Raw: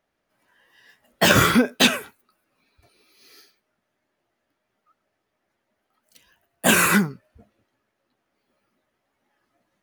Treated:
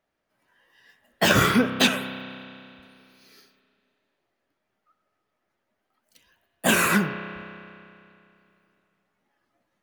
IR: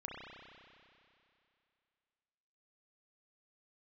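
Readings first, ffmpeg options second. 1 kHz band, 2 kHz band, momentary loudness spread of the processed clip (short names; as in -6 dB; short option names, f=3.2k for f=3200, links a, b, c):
-2.5 dB, -2.5 dB, 19 LU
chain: -filter_complex "[0:a]asplit=2[a][b];[1:a]atrim=start_sample=2205,lowpass=7k[c];[b][c]afir=irnorm=-1:irlink=0,volume=-5.5dB[d];[a][d]amix=inputs=2:normalize=0,volume=-5dB"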